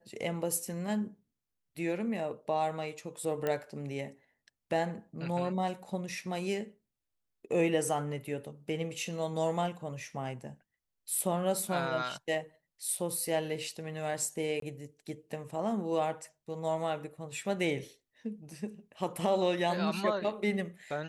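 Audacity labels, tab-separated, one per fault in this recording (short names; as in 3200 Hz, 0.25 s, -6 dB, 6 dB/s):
3.470000	3.470000	pop -19 dBFS
14.600000	14.620000	gap 23 ms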